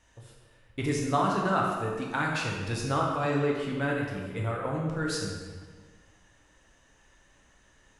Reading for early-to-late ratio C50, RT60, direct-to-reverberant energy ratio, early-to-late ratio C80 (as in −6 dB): 1.0 dB, 1.5 s, −2.5 dB, 3.0 dB